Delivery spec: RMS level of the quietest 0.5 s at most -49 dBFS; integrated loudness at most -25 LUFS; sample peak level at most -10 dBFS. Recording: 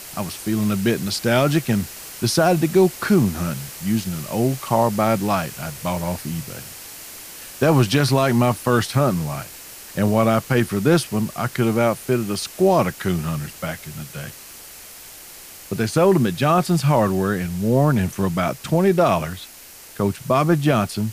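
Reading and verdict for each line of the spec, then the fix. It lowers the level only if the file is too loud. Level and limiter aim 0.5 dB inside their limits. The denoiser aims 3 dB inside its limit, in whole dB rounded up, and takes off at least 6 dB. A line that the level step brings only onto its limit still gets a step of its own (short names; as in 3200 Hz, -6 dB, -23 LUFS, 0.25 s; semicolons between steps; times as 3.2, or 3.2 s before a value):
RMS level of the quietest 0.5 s -42 dBFS: fail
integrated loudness -20.0 LUFS: fail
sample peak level -5.0 dBFS: fail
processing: denoiser 6 dB, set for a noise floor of -42 dBFS; gain -5.5 dB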